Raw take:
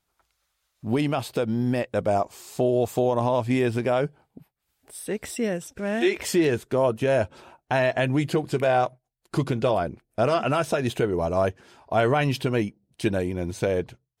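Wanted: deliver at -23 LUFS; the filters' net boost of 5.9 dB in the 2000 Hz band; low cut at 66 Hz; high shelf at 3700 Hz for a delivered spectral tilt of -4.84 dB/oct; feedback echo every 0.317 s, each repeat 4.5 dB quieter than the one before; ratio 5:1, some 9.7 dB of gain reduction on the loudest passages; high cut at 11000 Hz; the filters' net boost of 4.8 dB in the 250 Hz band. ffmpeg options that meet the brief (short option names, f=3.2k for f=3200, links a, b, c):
-af "highpass=66,lowpass=11k,equalizer=f=250:t=o:g=6,equalizer=f=2k:t=o:g=5.5,highshelf=f=3.7k:g=7.5,acompressor=threshold=-25dB:ratio=5,aecho=1:1:317|634|951|1268|1585|1902|2219|2536|2853:0.596|0.357|0.214|0.129|0.0772|0.0463|0.0278|0.0167|0.01,volume=5dB"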